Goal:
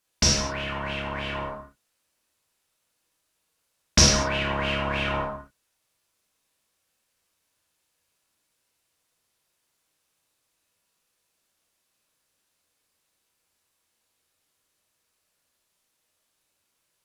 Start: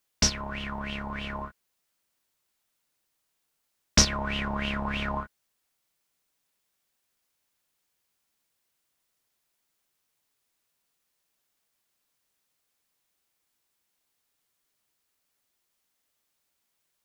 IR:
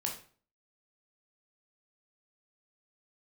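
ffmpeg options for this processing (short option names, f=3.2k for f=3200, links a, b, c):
-filter_complex "[1:a]atrim=start_sample=2205,atrim=end_sample=6174,asetrate=25137,aresample=44100[a];[0:a][a]afir=irnorm=-1:irlink=0,volume=-1dB"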